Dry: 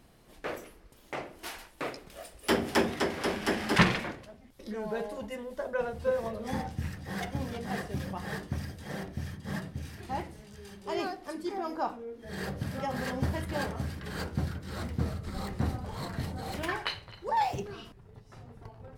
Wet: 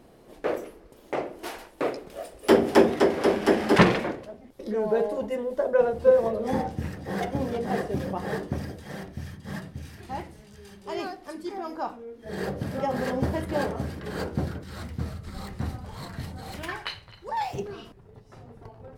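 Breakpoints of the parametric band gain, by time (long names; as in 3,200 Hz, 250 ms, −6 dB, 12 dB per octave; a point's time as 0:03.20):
parametric band 440 Hz 2.2 octaves
+11.5 dB
from 0:08.80 +0.5 dB
from 0:12.26 +9 dB
from 0:14.64 −3 dB
from 0:17.55 +5.5 dB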